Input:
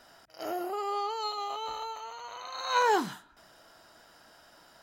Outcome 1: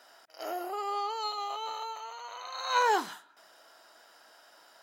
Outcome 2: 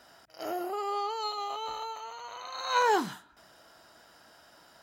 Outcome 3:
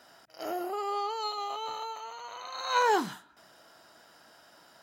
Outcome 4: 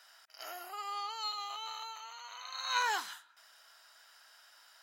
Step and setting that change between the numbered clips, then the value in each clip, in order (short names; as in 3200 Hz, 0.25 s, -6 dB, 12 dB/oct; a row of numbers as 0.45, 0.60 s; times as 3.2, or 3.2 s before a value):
HPF, cutoff: 430, 42, 110, 1400 Hz